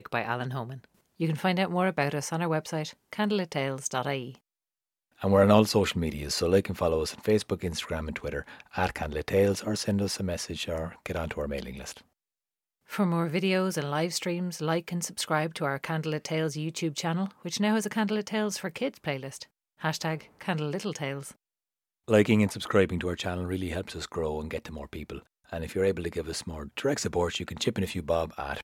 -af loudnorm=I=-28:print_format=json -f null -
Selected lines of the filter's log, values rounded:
"input_i" : "-29.3",
"input_tp" : "-5.1",
"input_lra" : "6.5",
"input_thresh" : "-39.7",